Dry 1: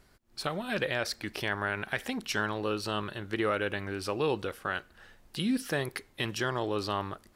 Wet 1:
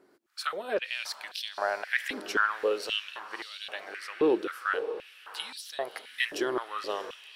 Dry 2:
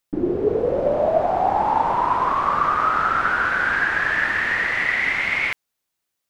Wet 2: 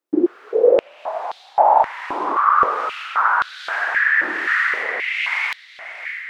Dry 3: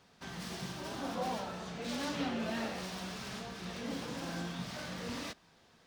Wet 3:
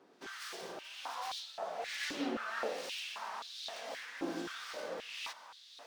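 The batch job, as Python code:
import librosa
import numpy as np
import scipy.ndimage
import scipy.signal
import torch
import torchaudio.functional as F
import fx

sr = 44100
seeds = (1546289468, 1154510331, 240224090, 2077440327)

y = fx.harmonic_tremolo(x, sr, hz=1.2, depth_pct=70, crossover_hz=1700.0)
y = fx.echo_diffused(y, sr, ms=617, feedback_pct=50, wet_db=-12.0)
y = fx.filter_held_highpass(y, sr, hz=3.8, low_hz=330.0, high_hz=3800.0)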